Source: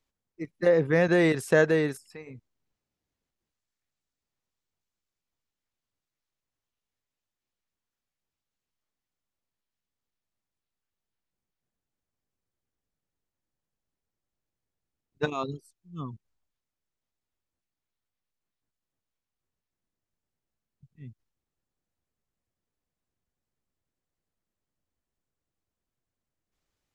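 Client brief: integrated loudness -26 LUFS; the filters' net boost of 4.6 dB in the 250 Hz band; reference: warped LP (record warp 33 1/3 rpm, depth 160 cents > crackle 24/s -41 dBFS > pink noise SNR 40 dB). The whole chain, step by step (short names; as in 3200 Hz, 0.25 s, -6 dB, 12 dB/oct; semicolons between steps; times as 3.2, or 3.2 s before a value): bell 250 Hz +7.5 dB; record warp 33 1/3 rpm, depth 160 cents; crackle 24/s -41 dBFS; pink noise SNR 40 dB; gain -2.5 dB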